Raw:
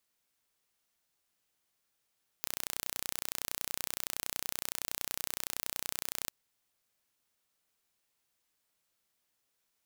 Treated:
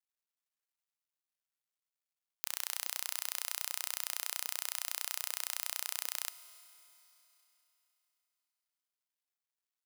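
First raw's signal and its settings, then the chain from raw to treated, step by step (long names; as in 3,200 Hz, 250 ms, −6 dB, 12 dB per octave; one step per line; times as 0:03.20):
impulse train 30.7 per second, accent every 0, −7.5 dBFS 3.85 s
mu-law and A-law mismatch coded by A
high-pass filter 780 Hz 12 dB per octave
four-comb reverb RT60 3.5 s, combs from 26 ms, DRR 13.5 dB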